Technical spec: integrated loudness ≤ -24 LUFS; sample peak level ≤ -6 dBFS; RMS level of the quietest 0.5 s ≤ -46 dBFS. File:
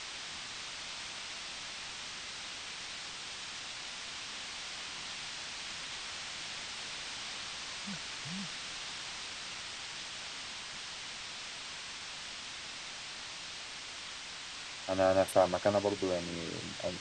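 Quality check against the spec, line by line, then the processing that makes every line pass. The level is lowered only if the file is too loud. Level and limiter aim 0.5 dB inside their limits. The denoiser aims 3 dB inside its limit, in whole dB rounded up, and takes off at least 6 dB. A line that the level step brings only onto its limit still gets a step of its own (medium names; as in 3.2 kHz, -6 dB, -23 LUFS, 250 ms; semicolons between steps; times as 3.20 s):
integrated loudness -37.5 LUFS: pass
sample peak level -14.0 dBFS: pass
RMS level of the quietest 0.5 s -45 dBFS: fail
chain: noise reduction 6 dB, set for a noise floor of -45 dBFS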